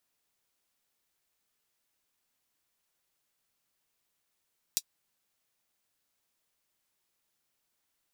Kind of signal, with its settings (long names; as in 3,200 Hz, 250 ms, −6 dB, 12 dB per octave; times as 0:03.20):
closed synth hi-hat, high-pass 4,600 Hz, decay 0.06 s